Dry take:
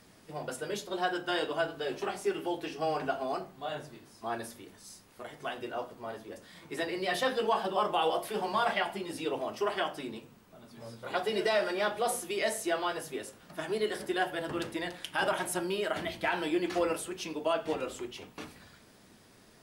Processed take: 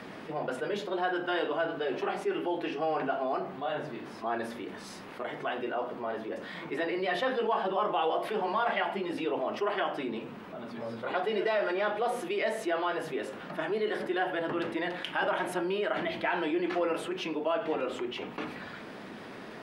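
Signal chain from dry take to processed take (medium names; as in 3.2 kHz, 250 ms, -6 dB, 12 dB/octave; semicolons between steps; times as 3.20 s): three-band isolator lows -17 dB, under 160 Hz, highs -21 dB, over 3.3 kHz; level flattener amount 50%; trim -1.5 dB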